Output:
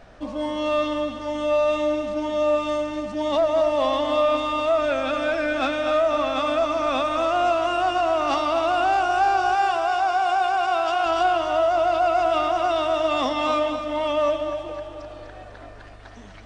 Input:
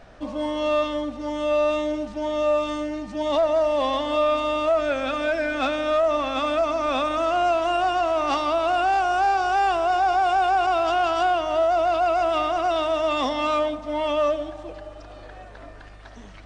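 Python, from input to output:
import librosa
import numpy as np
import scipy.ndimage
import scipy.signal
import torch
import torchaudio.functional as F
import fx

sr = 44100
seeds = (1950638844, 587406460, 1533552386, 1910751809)

y = fx.low_shelf(x, sr, hz=320.0, db=-10.5, at=(9.55, 11.06))
y = fx.echo_feedback(y, sr, ms=249, feedback_pct=49, wet_db=-8.5)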